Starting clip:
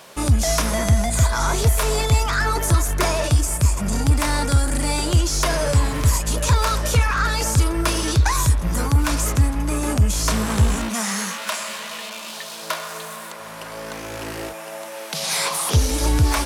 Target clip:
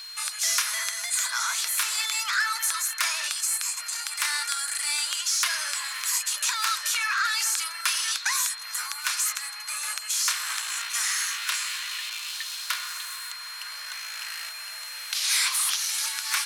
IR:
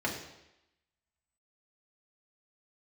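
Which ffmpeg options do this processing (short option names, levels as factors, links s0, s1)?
-af "highpass=f=1400:w=0.5412,highpass=f=1400:w=1.3066,aeval=exprs='val(0)+0.0126*sin(2*PI*4200*n/s)':c=same"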